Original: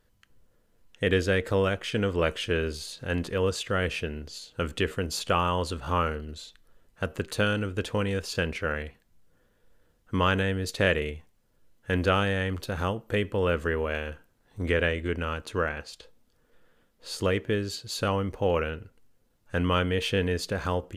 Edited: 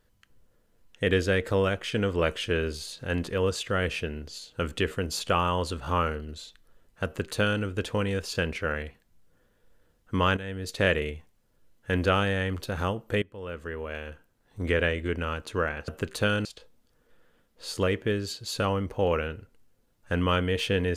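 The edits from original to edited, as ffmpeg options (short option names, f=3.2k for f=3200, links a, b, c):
-filter_complex "[0:a]asplit=5[a][b][c][d][e];[a]atrim=end=10.37,asetpts=PTS-STARTPTS,afade=t=out:st=10.366:d=0.004:c=hsin:silence=0.199526[f];[b]atrim=start=10.37:end=13.22,asetpts=PTS-STARTPTS,afade=t=in:d=0.48:silence=0.199526,afade=t=out:st=2.846:d=0.004:c=hsin:silence=0.105925[g];[c]atrim=start=13.22:end=15.882,asetpts=PTS-STARTPTS,afade=t=in:d=1.51:silence=0.105925[h];[d]atrim=start=7.048:end=7.622[i];[e]atrim=start=15.878[j];[f][g][h]concat=n=3:v=0:a=1[k];[k][i]acrossfade=d=0.004:c1=hsin:c2=hsin[l];[l][j]acrossfade=d=0.004:c1=hsin:c2=hsin"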